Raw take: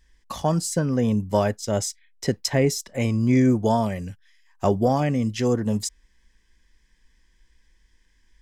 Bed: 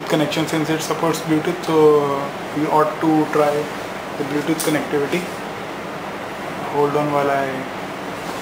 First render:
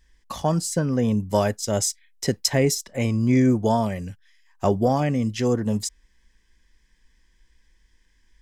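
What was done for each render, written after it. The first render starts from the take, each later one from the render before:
0:01.30–0:02.75: parametric band 12,000 Hz +6.5 dB 2.1 octaves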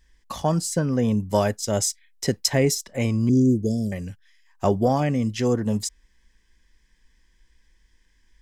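0:03.29–0:03.92: inverse Chebyshev band-stop filter 950–2,200 Hz, stop band 60 dB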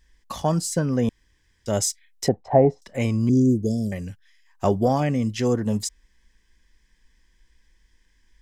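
0:01.09–0:01.66: fill with room tone
0:02.28–0:02.82: low-pass with resonance 760 Hz, resonance Q 6.7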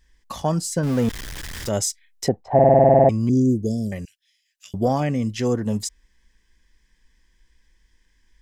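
0:00.83–0:01.69: converter with a step at zero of −27 dBFS
0:02.54: stutter in place 0.05 s, 11 plays
0:04.05–0:04.74: inverse Chebyshev high-pass filter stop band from 950 Hz, stop band 50 dB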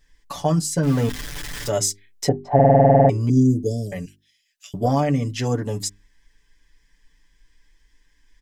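mains-hum notches 50/100/150/200/250/300/350/400 Hz
comb filter 6.9 ms, depth 75%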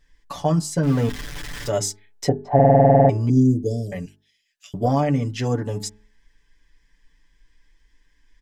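high-shelf EQ 5,500 Hz −7 dB
hum removal 214.2 Hz, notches 8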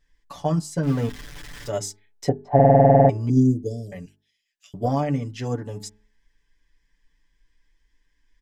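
expander for the loud parts 1.5 to 1, over −25 dBFS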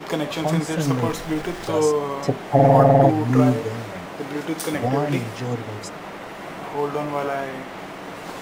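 mix in bed −7 dB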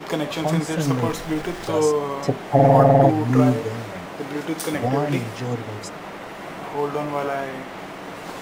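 no processing that can be heard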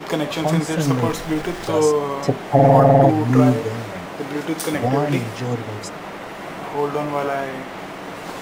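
level +2.5 dB
brickwall limiter −2 dBFS, peak gain reduction 3 dB

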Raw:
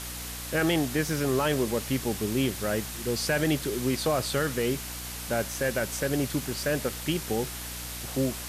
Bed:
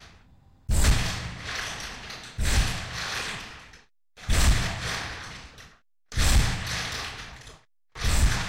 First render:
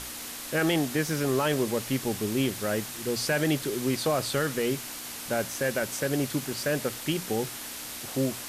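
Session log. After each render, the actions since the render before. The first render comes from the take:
mains-hum notches 60/120/180 Hz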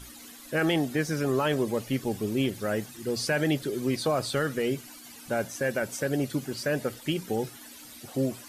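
broadband denoise 14 dB, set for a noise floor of −39 dBFS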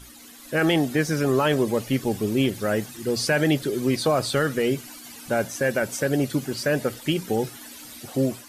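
automatic gain control gain up to 5 dB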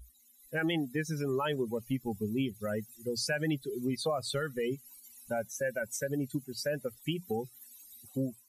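spectral dynamics exaggerated over time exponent 2
downward compressor 2 to 1, threshold −34 dBFS, peak gain reduction 8.5 dB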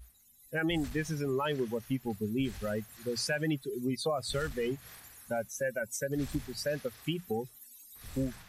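mix in bed −23.5 dB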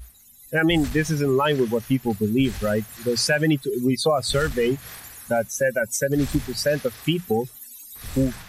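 level +11.5 dB

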